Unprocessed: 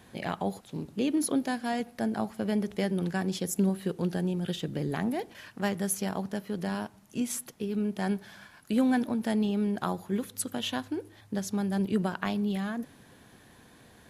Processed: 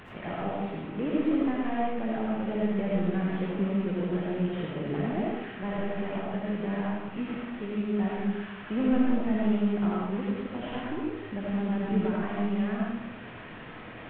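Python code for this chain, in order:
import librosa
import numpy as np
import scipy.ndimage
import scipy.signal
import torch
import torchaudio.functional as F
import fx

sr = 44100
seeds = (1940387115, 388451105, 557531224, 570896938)

y = fx.delta_mod(x, sr, bps=16000, step_db=-38.5)
y = fx.rev_freeverb(y, sr, rt60_s=0.97, hf_ratio=0.55, predelay_ms=40, drr_db=-4.0)
y = y * librosa.db_to_amplitude(-3.5)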